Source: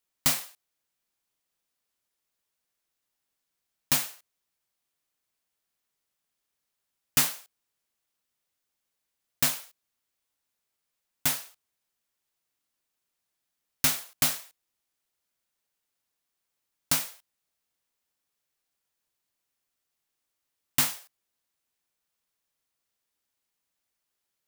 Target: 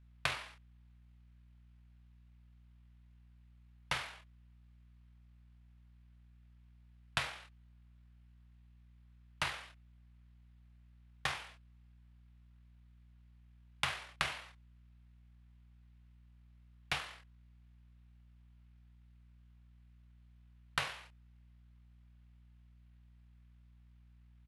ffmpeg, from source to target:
ffmpeg -i in.wav -filter_complex "[0:a]acrossover=split=190 6400:gain=0.251 1 0.0794[link_01][link_02][link_03];[link_01][link_02][link_03]amix=inputs=3:normalize=0,asplit=2[link_04][link_05];[link_05]adelay=28,volume=-6dB[link_06];[link_04][link_06]amix=inputs=2:normalize=0,acompressor=threshold=-38dB:ratio=5,asetrate=23361,aresample=44100,atempo=1.88775,aeval=exprs='val(0)+0.000631*(sin(2*PI*60*n/s)+sin(2*PI*2*60*n/s)/2+sin(2*PI*3*60*n/s)/3+sin(2*PI*4*60*n/s)/4+sin(2*PI*5*60*n/s)/5)':channel_layout=same,equalizer=frequency=340:width_type=o:width=1.3:gain=-14,volume=5.5dB" out.wav

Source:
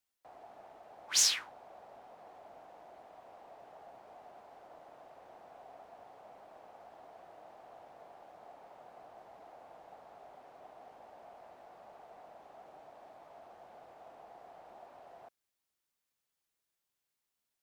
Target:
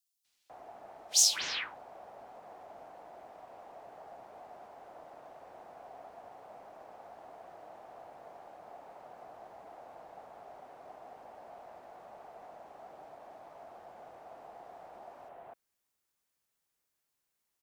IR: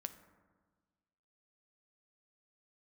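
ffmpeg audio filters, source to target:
-filter_complex "[0:a]acrossover=split=3400[link_01][link_02];[link_01]adelay=250[link_03];[link_03][link_02]amix=inputs=2:normalize=0,volume=3.5dB"

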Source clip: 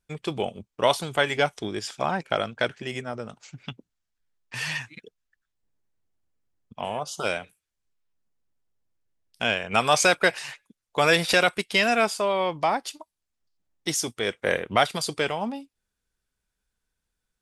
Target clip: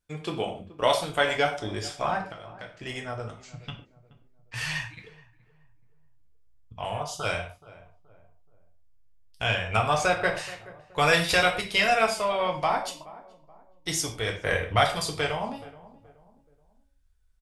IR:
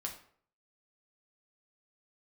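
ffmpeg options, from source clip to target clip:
-filter_complex "[0:a]asubboost=boost=12:cutoff=65,asettb=1/sr,asplit=3[link_01][link_02][link_03];[link_01]atrim=end=2.174[link_04];[link_02]atrim=start=2.17:end=2.77,asetpts=PTS-STARTPTS,afade=type=in:duration=0.004:curve=qsin,afade=type=out:start_time=0.596:duration=0.004:curve=qsin,acompressor=threshold=-38dB:ratio=10[link_05];[link_03]atrim=start=2.766[link_06];[link_04][link_05]acrossfade=duration=0.004:curve1=hsin:curve2=qsin[link_07];[link_07][link_06]acrossfade=duration=0.004:curve1=qsin:curve2=hsin,asettb=1/sr,asplit=3[link_08][link_09][link_10];[link_08]atrim=end=9.774[link_11];[link_09]atrim=start=9.77:end=10.37,asetpts=PTS-STARTPTS,afade=type=in:duration=0.004:curve=qsin,afade=type=out:start_time=0.596:duration=0.004:curve=qsin,highshelf=frequency=2100:gain=-10.5[link_12];[link_10]atrim=start=10.366[link_13];[link_11][link_12]acrossfade=duration=0.004:curve1=hsin:curve2=qsin[link_14];[link_14][link_13]acrossfade=duration=0.004:curve1=qsin:curve2=hsin,asplit=2[link_15][link_16];[link_16]adelay=426,lowpass=frequency=970:poles=1,volume=-17.5dB,asplit=2[link_17][link_18];[link_18]adelay=426,lowpass=frequency=970:poles=1,volume=0.42,asplit=2[link_19][link_20];[link_20]adelay=426,lowpass=frequency=970:poles=1,volume=0.42[link_21];[link_15][link_17][link_19][link_21]amix=inputs=4:normalize=0[link_22];[1:a]atrim=start_sample=2205,afade=type=out:start_time=0.2:duration=0.01,atrim=end_sample=9261[link_23];[link_22][link_23]afir=irnorm=-1:irlink=0"

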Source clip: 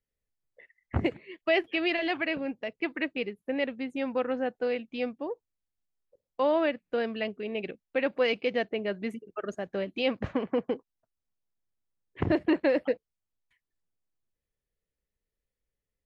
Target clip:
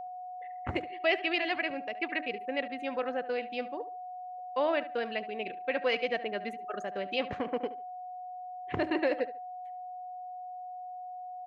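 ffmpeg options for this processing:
ffmpeg -i in.wav -filter_complex "[0:a]lowshelf=frequency=380:gain=-10,bandreject=frequency=313.1:width_type=h:width=4,bandreject=frequency=626.2:width_type=h:width=4,bandreject=frequency=939.3:width_type=h:width=4,bandreject=frequency=1252.4:width_type=h:width=4,bandreject=frequency=1565.5:width_type=h:width=4,bandreject=frequency=1878.6:width_type=h:width=4,atempo=1.4,aeval=exprs='val(0)+0.0126*sin(2*PI*730*n/s)':channel_layout=same,asplit=2[link_01][link_02];[link_02]adelay=72,lowpass=frequency=3500:poles=1,volume=-15dB,asplit=2[link_03][link_04];[link_04]adelay=72,lowpass=frequency=3500:poles=1,volume=0.23[link_05];[link_01][link_03][link_05]amix=inputs=3:normalize=0" out.wav

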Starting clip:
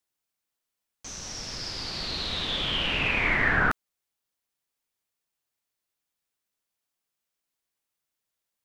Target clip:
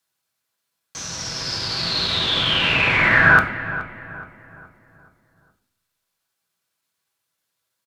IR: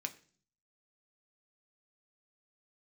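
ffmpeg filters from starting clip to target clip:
-filter_complex "[0:a]atempo=1.1,asplit=2[link_01][link_02];[link_02]adelay=423,lowpass=frequency=1800:poles=1,volume=-12.5dB,asplit=2[link_03][link_04];[link_04]adelay=423,lowpass=frequency=1800:poles=1,volume=0.46,asplit=2[link_05][link_06];[link_06]adelay=423,lowpass=frequency=1800:poles=1,volume=0.46,asplit=2[link_07][link_08];[link_08]adelay=423,lowpass=frequency=1800:poles=1,volume=0.46,asplit=2[link_09][link_10];[link_10]adelay=423,lowpass=frequency=1800:poles=1,volume=0.46[link_11];[link_01][link_03][link_05][link_07][link_09][link_11]amix=inputs=6:normalize=0[link_12];[1:a]atrim=start_sample=2205,asetrate=28224,aresample=44100[link_13];[link_12][link_13]afir=irnorm=-1:irlink=0,volume=7.5dB"

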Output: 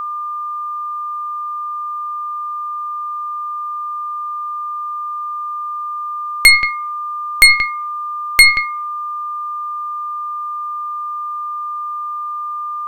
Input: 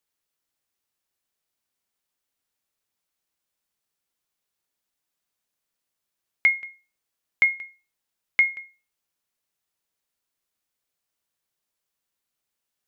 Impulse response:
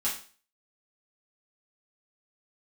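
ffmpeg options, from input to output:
-af "aeval=exprs='0.355*(cos(1*acos(clip(val(0)/0.355,-1,1)))-cos(1*PI/2))+0.112*(cos(4*acos(clip(val(0)/0.355,-1,1)))-cos(4*PI/2))+0.0251*(cos(8*acos(clip(val(0)/0.355,-1,1)))-cos(8*PI/2))':channel_layout=same,aeval=exprs='val(0)+0.00891*sin(2*PI*1200*n/s)':channel_layout=same,apsyclip=21.5dB,volume=-1.5dB"

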